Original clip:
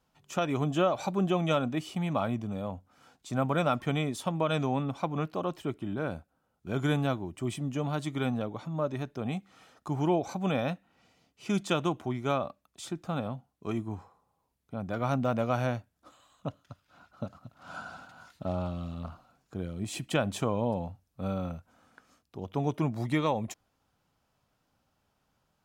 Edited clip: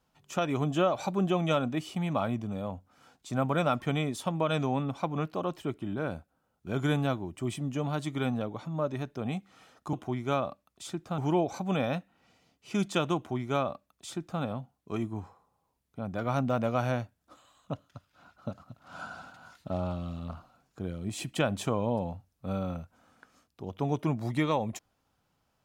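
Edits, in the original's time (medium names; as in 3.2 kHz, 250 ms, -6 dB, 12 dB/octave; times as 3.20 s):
11.91–13.16 s: copy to 9.93 s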